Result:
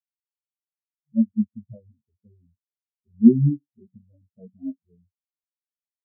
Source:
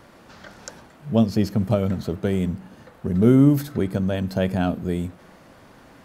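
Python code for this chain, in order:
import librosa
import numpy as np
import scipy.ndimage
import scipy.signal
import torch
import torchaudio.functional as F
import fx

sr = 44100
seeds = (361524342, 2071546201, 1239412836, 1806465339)

y = fx.chorus_voices(x, sr, voices=6, hz=0.47, base_ms=11, depth_ms=3.3, mix_pct=50)
y = fx.spectral_expand(y, sr, expansion=4.0)
y = y * 10.0 ** (5.0 / 20.0)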